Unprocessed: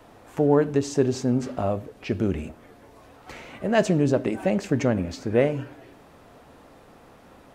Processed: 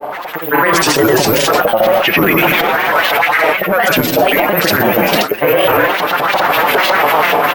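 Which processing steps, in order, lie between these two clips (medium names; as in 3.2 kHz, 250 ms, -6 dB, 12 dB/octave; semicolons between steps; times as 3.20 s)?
level rider gain up to 14 dB; careless resampling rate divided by 3×, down filtered, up zero stuff; LFO band-pass saw up 4.1 Hz 660–3600 Hz; Schroeder reverb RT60 0.95 s, combs from 33 ms, DRR 14 dB; transient shaper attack -3 dB, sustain +10 dB; comb 6 ms, depth 74%; delay 91 ms -10 dB; reverse; compression 12:1, threshold -37 dBFS, peak gain reduction 22.5 dB; reverse; granulator, pitch spread up and down by 3 st; loudness maximiser +34.5 dB; trim -1 dB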